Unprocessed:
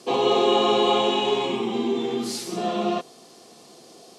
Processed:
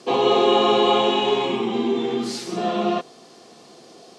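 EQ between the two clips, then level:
high-frequency loss of the air 53 metres
parametric band 1,600 Hz +2.5 dB
+2.5 dB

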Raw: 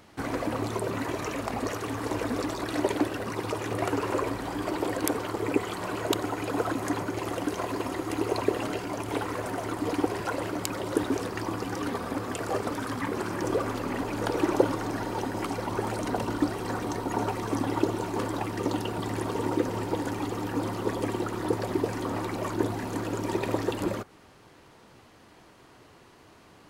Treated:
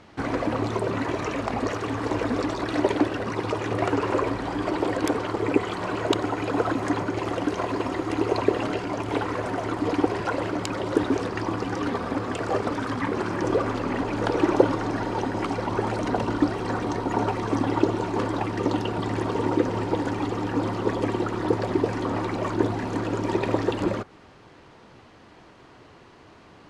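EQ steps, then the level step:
high-frequency loss of the air 88 metres
+4.5 dB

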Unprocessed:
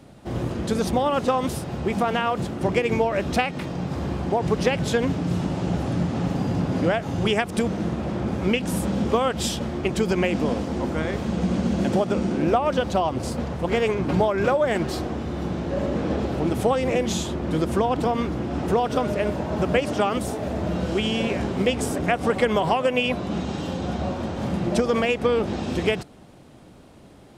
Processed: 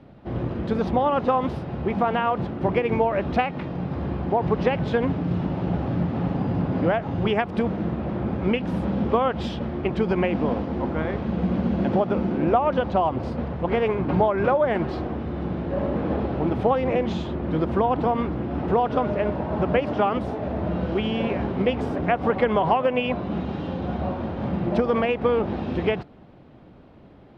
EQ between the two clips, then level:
dynamic equaliser 910 Hz, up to +4 dB, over −34 dBFS, Q 1.6
high-frequency loss of the air 330 metres
0.0 dB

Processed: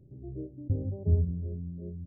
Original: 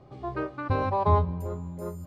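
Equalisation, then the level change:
Gaussian smoothing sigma 25 samples
0.0 dB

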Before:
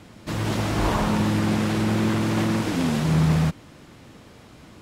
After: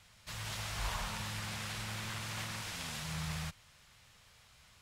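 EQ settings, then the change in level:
guitar amp tone stack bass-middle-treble 10-0-10
−5.5 dB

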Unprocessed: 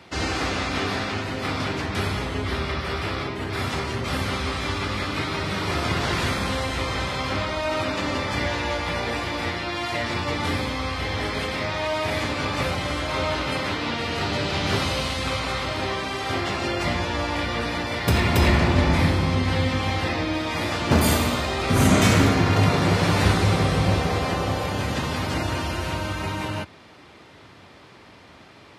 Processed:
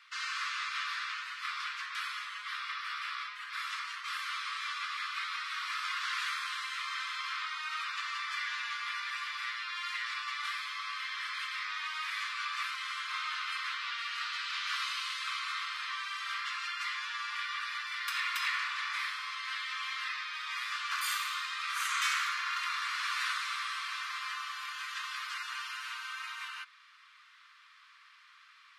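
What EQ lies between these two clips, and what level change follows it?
Chebyshev high-pass filter 1,100 Hz, order 6
high-shelf EQ 4,900 Hz −7.5 dB
−5.0 dB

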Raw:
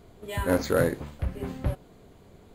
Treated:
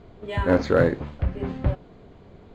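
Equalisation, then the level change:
high-frequency loss of the air 180 metres
+5.0 dB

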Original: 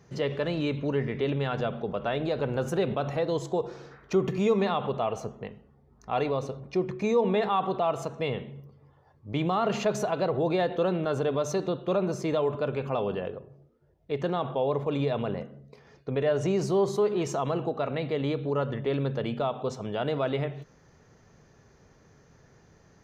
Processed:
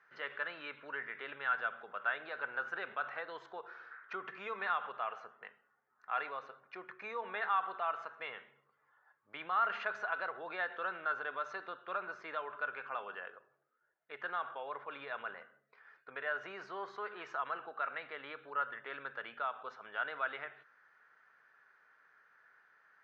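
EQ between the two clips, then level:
resonant band-pass 1,500 Hz, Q 4.8
high-frequency loss of the air 260 metres
spectral tilt +3.5 dB per octave
+6.5 dB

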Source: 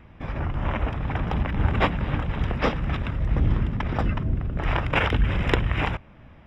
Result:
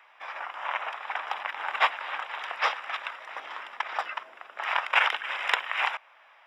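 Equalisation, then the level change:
high-pass filter 800 Hz 24 dB per octave
+2.5 dB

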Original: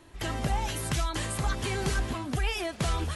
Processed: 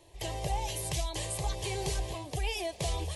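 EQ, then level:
low-shelf EQ 72 Hz −5.5 dB
phaser with its sweep stopped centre 580 Hz, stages 4
0.0 dB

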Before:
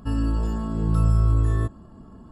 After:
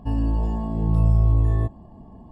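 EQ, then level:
Butterworth band-reject 1,400 Hz, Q 2.3
bass and treble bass +4 dB, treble −10 dB
parametric band 760 Hz +11.5 dB 0.58 octaves
−2.5 dB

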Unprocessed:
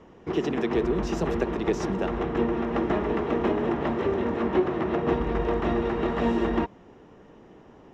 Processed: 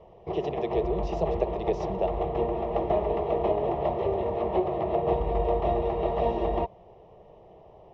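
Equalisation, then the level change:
high-frequency loss of the air 230 metres
parametric band 660 Hz +7.5 dB 0.35 octaves
phaser with its sweep stopped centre 630 Hz, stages 4
+2.0 dB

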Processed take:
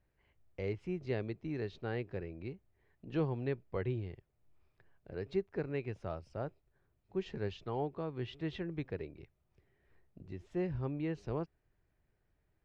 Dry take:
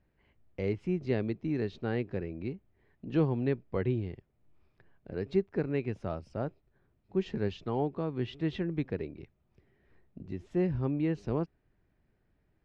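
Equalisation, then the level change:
parametric band 230 Hz −7 dB 1 octave
−3.5 dB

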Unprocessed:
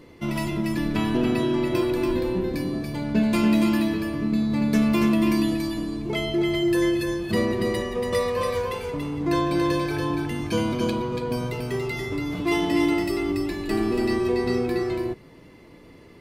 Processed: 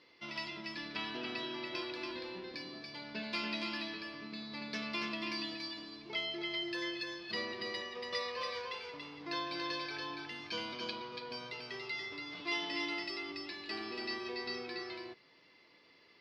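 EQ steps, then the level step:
resonant band-pass 5,100 Hz, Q 4.4
high-frequency loss of the air 390 metres
+16.5 dB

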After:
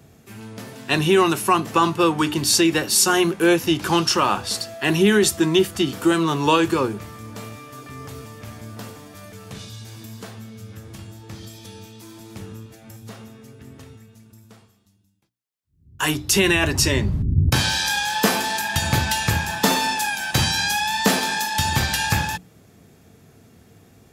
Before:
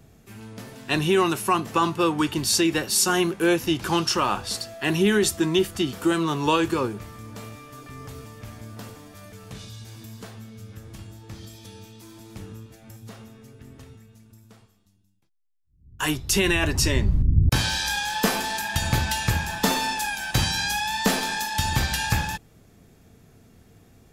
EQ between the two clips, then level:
high-pass filter 77 Hz
mains-hum notches 60/120/180/240/300 Hz
+4.0 dB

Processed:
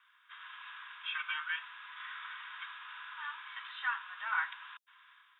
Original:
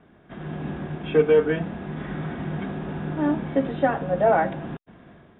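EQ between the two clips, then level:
Chebyshev high-pass with heavy ripple 980 Hz, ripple 3 dB
high-shelf EQ 3,200 Hz +10 dB
−3.0 dB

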